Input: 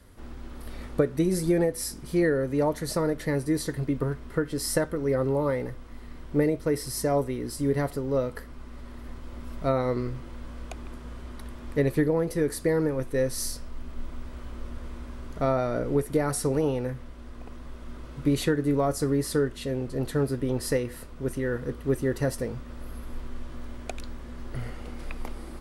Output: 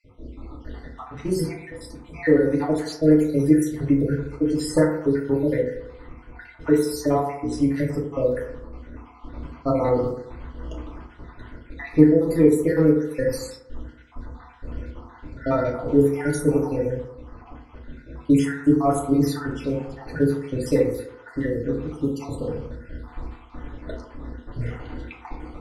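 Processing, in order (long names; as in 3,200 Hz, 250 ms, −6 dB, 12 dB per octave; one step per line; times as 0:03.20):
time-frequency cells dropped at random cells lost 62%
feedback delay network reverb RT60 0.82 s, low-frequency decay 0.85×, high-frequency decay 0.35×, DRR −4 dB
low-pass that shuts in the quiet parts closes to 2,400 Hz, open at −19.5 dBFS
level +1 dB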